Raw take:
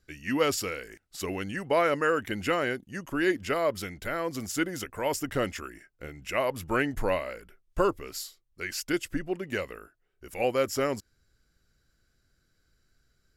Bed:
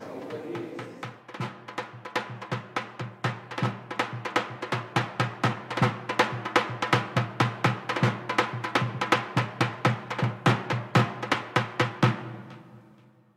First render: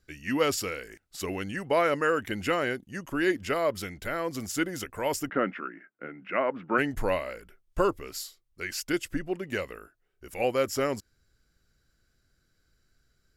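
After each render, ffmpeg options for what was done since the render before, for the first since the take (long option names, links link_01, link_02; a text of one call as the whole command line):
ffmpeg -i in.wav -filter_complex "[0:a]asplit=3[link_01][link_02][link_03];[link_01]afade=type=out:start_time=5.28:duration=0.02[link_04];[link_02]highpass=frequency=180:width=0.5412,highpass=frequency=180:width=1.3066,equalizer=frequency=190:width_type=q:width=4:gain=5,equalizer=frequency=280:width_type=q:width=4:gain=4,equalizer=frequency=1400:width_type=q:width=4:gain=7,lowpass=frequency=2400:width=0.5412,lowpass=frequency=2400:width=1.3066,afade=type=in:start_time=5.28:duration=0.02,afade=type=out:start_time=6.77:duration=0.02[link_05];[link_03]afade=type=in:start_time=6.77:duration=0.02[link_06];[link_04][link_05][link_06]amix=inputs=3:normalize=0" out.wav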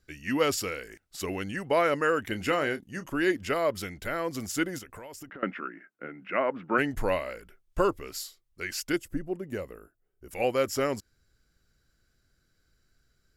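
ffmpeg -i in.wav -filter_complex "[0:a]asettb=1/sr,asplit=3[link_01][link_02][link_03];[link_01]atrim=end=2.294[link_04];[link_02]atrim=start=2.29:end=3.07,asetpts=PTS-STARTPTS,afade=type=in:duration=0.004:curve=qsin,afade=type=out:start_time=0.776:duration=0.004:curve=qsin,asplit=2[link_05][link_06];[link_06]adelay=27,volume=-11.5dB[link_07];[link_05][link_07]amix=inputs=2:normalize=0,atrim=end_sample=34398[link_08];[link_03]atrim=start=3.066[link_09];[link_04][link_08]acrossfade=duration=0.004:curve1=hsin:curve2=qsin[link_10];[link_10][link_09]acrossfade=duration=0.004:curve1=qsin:curve2=hsin,asettb=1/sr,asplit=3[link_11][link_12][link_13];[link_11]atrim=end=4.784[link_14];[link_12]atrim=start=4.78:end=5.43,asetpts=PTS-STARTPTS,afade=type=in:duration=0.004:curve=qsin,afade=type=out:start_time=0.646:duration=0.004:curve=qsin,acompressor=threshold=-40dB:ratio=12:attack=3.2:release=140:knee=1:detection=peak[link_15];[link_13]atrim=start=5.426[link_16];[link_14][link_15]acrossfade=duration=0.004:curve1=hsin:curve2=qsin[link_17];[link_17][link_16]acrossfade=duration=0.004:curve1=qsin:curve2=hsin,asettb=1/sr,asplit=3[link_18][link_19][link_20];[link_18]atrim=end=8.964[link_21];[link_19]atrim=start=8.96:end=10.31,asetpts=PTS-STARTPTS,afade=type=in:duration=0.004:curve=qsin,afade=type=out:start_time=1.346:duration=0.004:curve=qsin,equalizer=frequency=2900:width_type=o:width=2.8:gain=-12.5[link_22];[link_20]atrim=start=10.306[link_23];[link_21][link_22]acrossfade=duration=0.004:curve1=hsin:curve2=qsin[link_24];[link_24][link_23]acrossfade=duration=0.004:curve1=qsin:curve2=hsin" out.wav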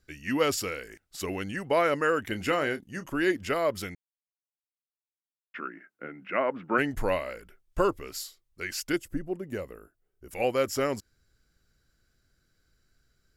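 ffmpeg -i in.wav -filter_complex "[0:a]asplit=3[link_01][link_02][link_03];[link_01]atrim=end=3.95,asetpts=PTS-STARTPTS,afade=type=out:start_time=3.946:duration=0.004:curve=hsin[link_04];[link_02]atrim=start=3.95:end=5.54,asetpts=PTS-STARTPTS,volume=0[link_05];[link_03]atrim=start=5.54,asetpts=PTS-STARTPTS,afade=type=in:duration=0.004:curve=hsin[link_06];[link_04][link_05][link_06]concat=n=3:v=0:a=1" out.wav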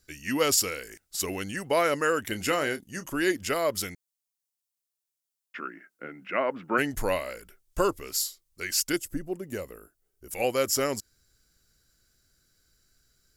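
ffmpeg -i in.wav -af "bass=frequency=250:gain=-1,treble=frequency=4000:gain=11" out.wav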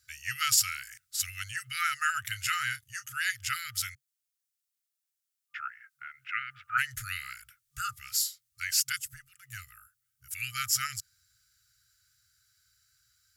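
ffmpeg -i in.wav -af "afftfilt=real='re*(1-between(b*sr/4096,130,1200))':imag='im*(1-between(b*sr/4096,130,1200))':win_size=4096:overlap=0.75,highpass=100" out.wav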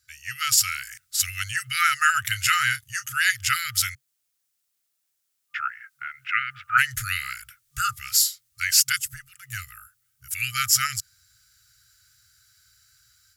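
ffmpeg -i in.wav -af "dynaudnorm=framelen=370:gausssize=3:maxgain=9.5dB" out.wav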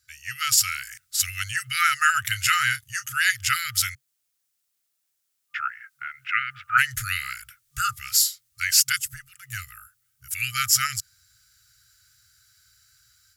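ffmpeg -i in.wav -af anull out.wav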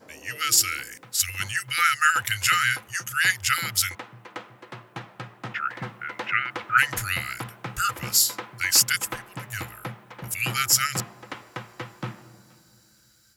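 ffmpeg -i in.wav -i bed.wav -filter_complex "[1:a]volume=-11.5dB[link_01];[0:a][link_01]amix=inputs=2:normalize=0" out.wav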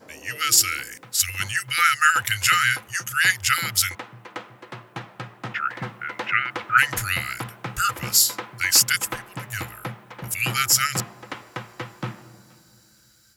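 ffmpeg -i in.wav -af "volume=2.5dB,alimiter=limit=-3dB:level=0:latency=1" out.wav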